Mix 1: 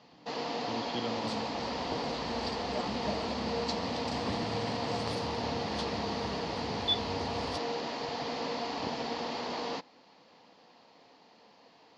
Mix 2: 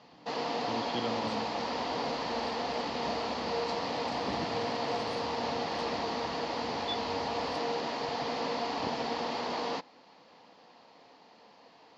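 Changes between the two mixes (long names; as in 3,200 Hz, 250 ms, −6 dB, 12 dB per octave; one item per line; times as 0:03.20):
second sound −9.5 dB
master: add parametric band 1,000 Hz +3 dB 2.4 octaves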